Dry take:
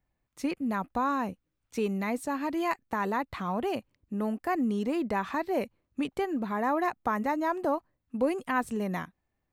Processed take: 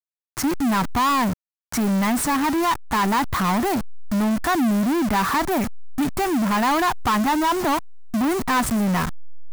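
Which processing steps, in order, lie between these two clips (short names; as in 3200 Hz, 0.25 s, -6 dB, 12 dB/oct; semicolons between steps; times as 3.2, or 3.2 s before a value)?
level-crossing sampler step -44 dBFS; fixed phaser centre 1200 Hz, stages 4; power-law curve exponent 0.35; gain +3.5 dB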